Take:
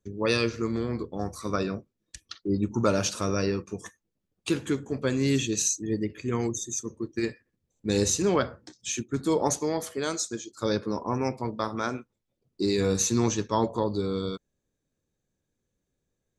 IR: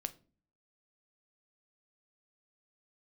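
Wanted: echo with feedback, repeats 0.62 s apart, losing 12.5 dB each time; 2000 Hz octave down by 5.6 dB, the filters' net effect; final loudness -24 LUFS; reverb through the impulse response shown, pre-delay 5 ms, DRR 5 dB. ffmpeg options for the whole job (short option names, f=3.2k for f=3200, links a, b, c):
-filter_complex "[0:a]equalizer=f=2k:t=o:g=-8,aecho=1:1:620|1240|1860:0.237|0.0569|0.0137,asplit=2[a][b];[1:a]atrim=start_sample=2205,adelay=5[c];[b][c]afir=irnorm=-1:irlink=0,volume=-3.5dB[d];[a][d]amix=inputs=2:normalize=0,volume=3.5dB"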